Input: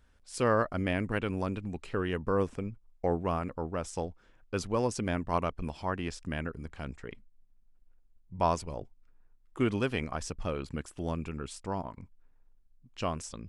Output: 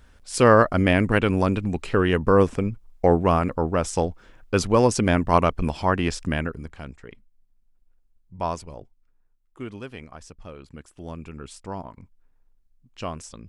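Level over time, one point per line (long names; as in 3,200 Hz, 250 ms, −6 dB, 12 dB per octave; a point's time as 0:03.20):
0:06.24 +11.5 dB
0:06.95 0 dB
0:08.59 0 dB
0:09.60 −7 dB
0:10.57 −7 dB
0:11.53 +1 dB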